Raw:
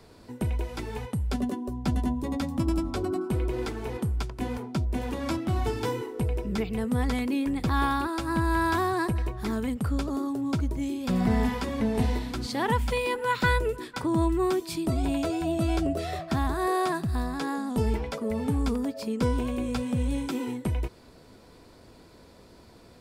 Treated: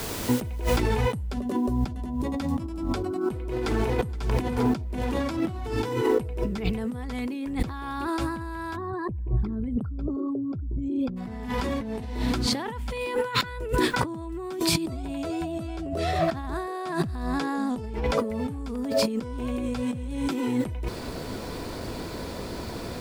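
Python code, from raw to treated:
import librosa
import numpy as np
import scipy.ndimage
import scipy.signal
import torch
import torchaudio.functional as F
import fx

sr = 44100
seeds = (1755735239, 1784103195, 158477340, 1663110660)

y = fx.noise_floor_step(x, sr, seeds[0], at_s=0.8, before_db=-52, after_db=-69, tilt_db=0.0)
y = fx.echo_throw(y, sr, start_s=3.48, length_s=0.61, ms=470, feedback_pct=50, wet_db=-9.5)
y = fx.envelope_sharpen(y, sr, power=2.0, at=(8.75, 11.16), fade=0.02)
y = fx.high_shelf(y, sr, hz=11000.0, db=-6.0, at=(15.67, 18.2))
y = fx.high_shelf(y, sr, hz=7300.0, db=-4.0)
y = fx.over_compress(y, sr, threshold_db=-38.0, ratio=-1.0)
y = y * librosa.db_to_amplitude(9.0)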